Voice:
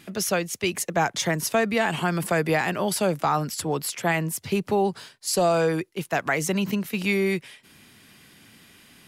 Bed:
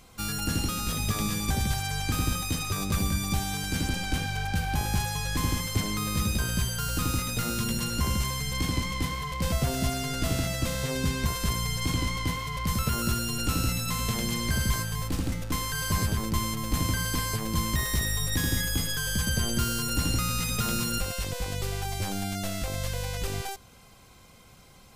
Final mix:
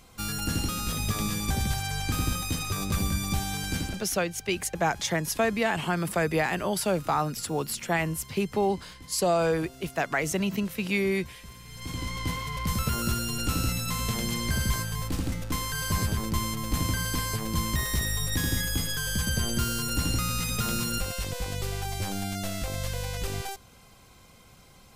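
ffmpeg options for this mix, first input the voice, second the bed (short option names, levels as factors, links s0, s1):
-filter_complex "[0:a]adelay=3850,volume=0.708[s0];[1:a]volume=7.5,afade=t=out:st=3.74:d=0.32:silence=0.125893,afade=t=in:st=11.66:d=0.7:silence=0.125893[s1];[s0][s1]amix=inputs=2:normalize=0"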